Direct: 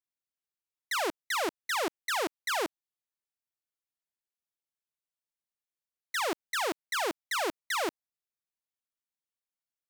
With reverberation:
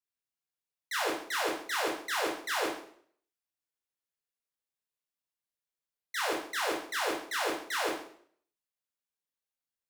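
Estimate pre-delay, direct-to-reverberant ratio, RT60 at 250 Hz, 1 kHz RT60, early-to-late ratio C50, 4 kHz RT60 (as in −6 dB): 6 ms, −3.5 dB, 0.60 s, 0.55 s, 4.0 dB, 0.50 s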